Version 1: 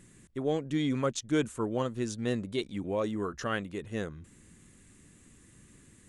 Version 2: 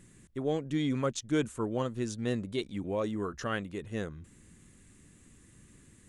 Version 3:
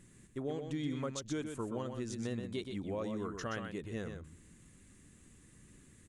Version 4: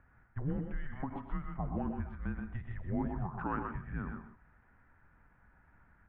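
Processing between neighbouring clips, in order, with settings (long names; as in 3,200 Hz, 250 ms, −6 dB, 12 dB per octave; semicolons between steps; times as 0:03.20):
low-shelf EQ 140 Hz +3 dB; level −1.5 dB
downward compressor 4 to 1, threshold −32 dBFS, peak gain reduction 7.5 dB; on a send: single-tap delay 125 ms −6.5 dB; on the sum: level −3 dB
single-sideband voice off tune −280 Hz 280–2,100 Hz; reverb whose tail is shaped and stops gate 170 ms rising, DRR 8 dB; every ending faded ahead of time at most 160 dB per second; level +5 dB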